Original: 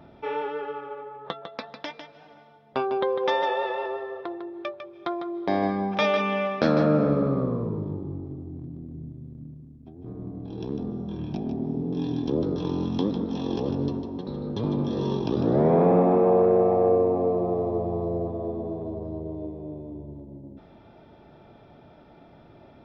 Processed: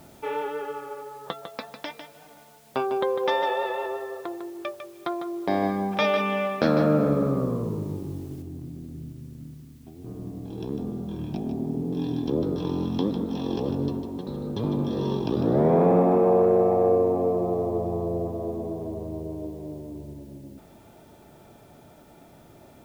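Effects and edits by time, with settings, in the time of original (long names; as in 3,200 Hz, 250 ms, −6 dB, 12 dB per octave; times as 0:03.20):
0:08.42: noise floor change −58 dB −64 dB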